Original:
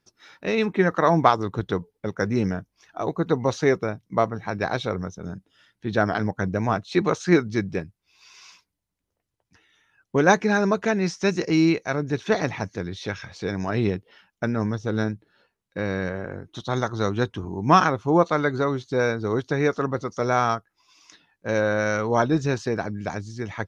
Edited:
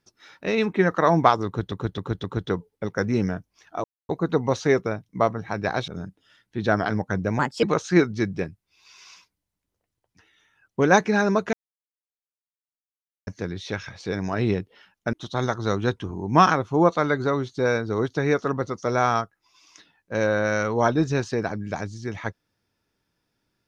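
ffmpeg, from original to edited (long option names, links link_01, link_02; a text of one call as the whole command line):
ffmpeg -i in.wav -filter_complex "[0:a]asplit=11[link_01][link_02][link_03][link_04][link_05][link_06][link_07][link_08][link_09][link_10][link_11];[link_01]atrim=end=1.722[link_12];[link_02]atrim=start=1.458:end=1.722[link_13];[link_03]atrim=start=1.458:end=1.722[link_14];[link_04]atrim=start=1.458:end=3.06,asetpts=PTS-STARTPTS,afade=type=out:start_time=1.598:duration=0.004:curve=hsin,apad=pad_dur=0.25[link_15];[link_05]atrim=start=3.06:end=4.852,asetpts=PTS-STARTPTS,afade=type=in:duration=0.004:curve=hsin[link_16];[link_06]atrim=start=5.168:end=6.684[link_17];[link_07]atrim=start=6.68:end=6.99,asetpts=PTS-STARTPTS,asetrate=56889,aresample=44100[link_18];[link_08]atrim=start=6.986:end=10.89,asetpts=PTS-STARTPTS,afade=type=out:start_time=3.9:duration=0.004:curve=hsin[link_19];[link_09]atrim=start=10.89:end=12.63,asetpts=PTS-STARTPTS,volume=0[link_20];[link_10]atrim=start=12.63:end=14.492,asetpts=PTS-STARTPTS,afade=type=in:duration=0.004:curve=hsin[link_21];[link_11]atrim=start=16.468[link_22];[link_12][link_13]acrossfade=duration=0.004:curve1=hsin:curve2=hsin[link_23];[link_23][link_14]acrossfade=duration=0.004:curve1=hsin:curve2=hsin[link_24];[link_15][link_16]concat=n=2:v=0:a=1[link_25];[link_24][link_25]acrossfade=duration=0.004:curve1=hsin:curve2=hsin[link_26];[link_26][link_17]acrossfade=duration=0.004:curve1=hsin:curve2=hsin[link_27];[link_27][link_18]acrossfade=duration=0.004:curve1=hsin:curve2=hsin[link_28];[link_19][link_20][link_21]concat=n=3:v=0:a=1[link_29];[link_28][link_29]acrossfade=duration=0.004:curve1=hsin:curve2=hsin[link_30];[link_30][link_22]acrossfade=duration=0.004:curve1=hsin:curve2=hsin" out.wav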